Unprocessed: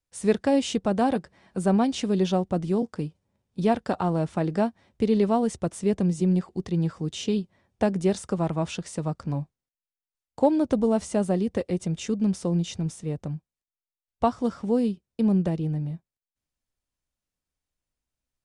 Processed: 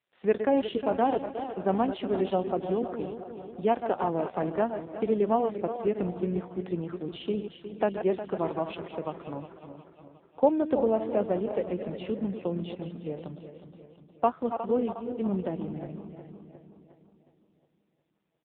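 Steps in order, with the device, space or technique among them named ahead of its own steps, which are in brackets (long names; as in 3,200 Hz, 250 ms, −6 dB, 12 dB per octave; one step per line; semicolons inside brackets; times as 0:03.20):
feedback delay that plays each chunk backwards 180 ms, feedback 71%, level −9 dB
0:14.39–0:15.07: high-pass filter 130 Hz 12 dB per octave
satellite phone (band-pass filter 320–3,300 Hz; single-tap delay 493 ms −23 dB; AMR narrowband 5.9 kbit/s 8,000 Hz)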